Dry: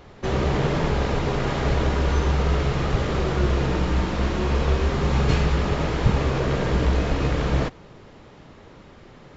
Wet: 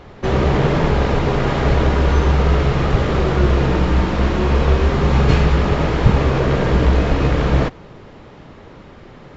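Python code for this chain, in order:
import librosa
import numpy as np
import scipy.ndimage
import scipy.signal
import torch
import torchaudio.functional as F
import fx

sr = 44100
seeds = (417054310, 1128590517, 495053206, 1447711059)

y = fx.high_shelf(x, sr, hz=5600.0, db=-9.5)
y = y * librosa.db_to_amplitude(6.5)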